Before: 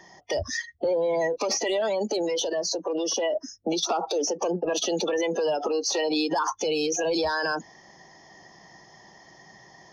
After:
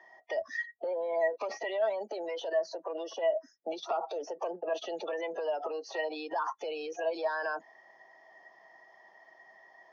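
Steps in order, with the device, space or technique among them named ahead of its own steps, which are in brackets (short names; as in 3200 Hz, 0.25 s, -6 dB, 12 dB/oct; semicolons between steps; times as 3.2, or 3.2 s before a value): tin-can telephone (BPF 560–2200 Hz; small resonant body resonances 650/1900 Hz, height 10 dB, ringing for 90 ms); 2.27–3.11 dynamic EQ 1600 Hz, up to +5 dB, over -42 dBFS, Q 1.1; HPF 110 Hz; gain -6 dB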